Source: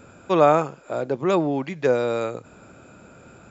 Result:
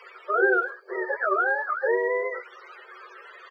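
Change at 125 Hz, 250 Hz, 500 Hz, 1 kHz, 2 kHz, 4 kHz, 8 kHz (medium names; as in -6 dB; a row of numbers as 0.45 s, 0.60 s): under -40 dB, under -10 dB, -5.0 dB, -3.0 dB, +10.5 dB, under -10 dB, no reading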